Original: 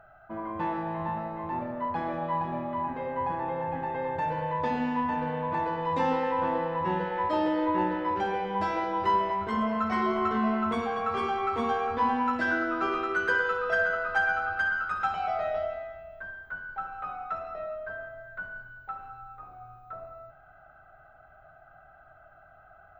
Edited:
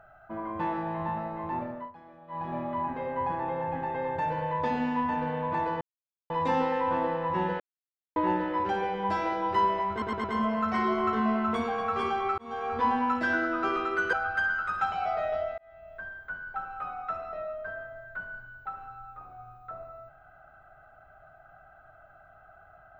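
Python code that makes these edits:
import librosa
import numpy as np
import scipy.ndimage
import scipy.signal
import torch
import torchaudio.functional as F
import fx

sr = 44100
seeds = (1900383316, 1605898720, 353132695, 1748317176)

y = fx.edit(x, sr, fx.fade_down_up(start_s=1.52, length_s=1.15, db=-19.5, fade_s=0.4, curve='qsin'),
    fx.insert_silence(at_s=5.81, length_s=0.49),
    fx.silence(start_s=7.11, length_s=0.56),
    fx.stutter(start_s=9.42, slice_s=0.11, count=4),
    fx.fade_in_span(start_s=11.56, length_s=0.4),
    fx.cut(start_s=13.31, length_s=1.04),
    fx.fade_in_span(start_s=15.8, length_s=0.39), tone=tone)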